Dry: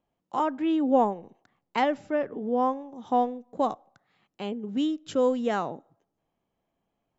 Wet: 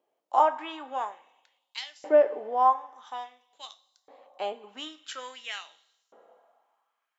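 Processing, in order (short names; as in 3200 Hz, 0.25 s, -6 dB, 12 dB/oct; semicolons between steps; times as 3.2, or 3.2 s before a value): two-slope reverb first 0.28 s, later 2 s, from -18 dB, DRR 8 dB; LFO high-pass saw up 0.49 Hz 420–5400 Hz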